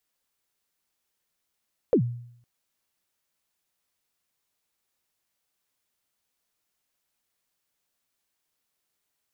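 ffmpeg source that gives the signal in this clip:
-f lavfi -i "aevalsrc='0.2*pow(10,-3*t/0.67)*sin(2*PI*(550*0.086/log(120/550)*(exp(log(120/550)*min(t,0.086)/0.086)-1)+120*max(t-0.086,0)))':d=0.51:s=44100"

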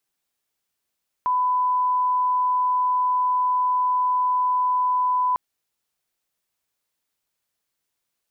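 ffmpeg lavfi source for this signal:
-f lavfi -i "sine=f=1000:d=4.1:r=44100,volume=0.06dB"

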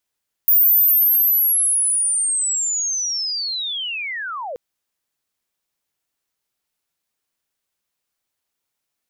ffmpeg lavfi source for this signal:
-f lavfi -i "aevalsrc='pow(10,(-10-16*t/4.08)/20)*sin(2*PI*(15000*t-14540*t*t/(2*4.08)))':d=4.08:s=44100"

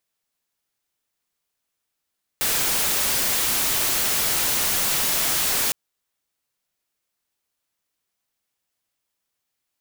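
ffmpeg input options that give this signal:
-f lavfi -i "anoisesrc=c=white:a=0.138:d=3.31:r=44100:seed=1"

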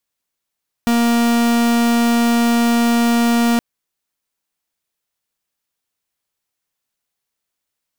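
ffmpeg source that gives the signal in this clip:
-f lavfi -i "aevalsrc='0.188*(2*lt(mod(235*t,1),0.44)-1)':d=2.72:s=44100"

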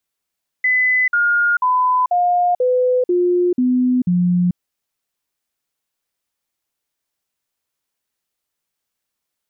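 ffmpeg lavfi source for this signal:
-f lavfi -i "aevalsrc='0.237*clip(min(mod(t,0.49),0.44-mod(t,0.49))/0.005,0,1)*sin(2*PI*2010*pow(2,-floor(t/0.49)/2)*mod(t,0.49))':d=3.92:s=44100"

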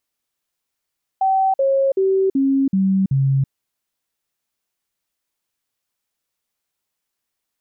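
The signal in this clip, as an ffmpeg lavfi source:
-f lavfi -i "aevalsrc='0.211*clip(min(mod(t,0.38),0.33-mod(t,0.38))/0.005,0,1)*sin(2*PI*768*pow(2,-floor(t/0.38)/2)*mod(t,0.38))':d=2.28:s=44100"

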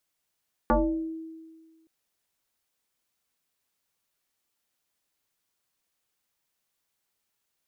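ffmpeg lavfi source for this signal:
-f lavfi -i "aevalsrc='0.141*pow(10,-3*t/1.6)*sin(2*PI*323*t+3.7*pow(10,-3*t/0.6)*sin(2*PI*0.86*323*t))':d=1.17:s=44100"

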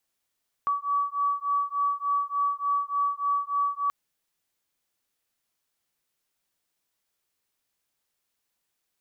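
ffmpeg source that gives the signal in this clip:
-f lavfi -i "aevalsrc='0.0447*(sin(2*PI*1140*t)+sin(2*PI*1143.4*t))':d=3.23:s=44100"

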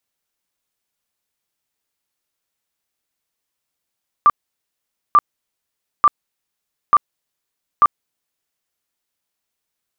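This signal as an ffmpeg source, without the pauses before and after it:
-f lavfi -i "aevalsrc='0.473*sin(2*PI*1180*mod(t,0.89))*lt(mod(t,0.89),45/1180)':d=4.45:s=44100"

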